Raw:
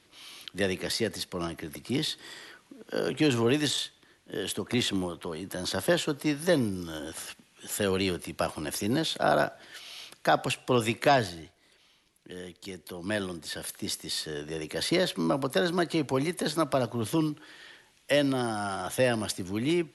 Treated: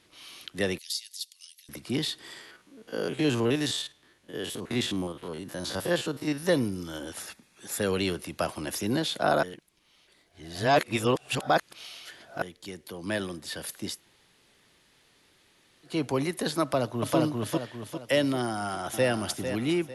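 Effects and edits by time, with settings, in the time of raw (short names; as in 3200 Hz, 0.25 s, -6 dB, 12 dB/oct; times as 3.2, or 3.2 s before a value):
0.78–1.69 inverse Chebyshev high-pass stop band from 620 Hz, stop band 80 dB
2.41–6.46 stepped spectrum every 50 ms
7.21–7.89 notch 3000 Hz, Q 6.2
9.43–12.42 reverse
13.94–15.91 room tone, crossfade 0.16 s
16.62–17.17 echo throw 0.4 s, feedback 40%, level -0.5 dB
18.48–19.1 echo throw 0.45 s, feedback 35%, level -8.5 dB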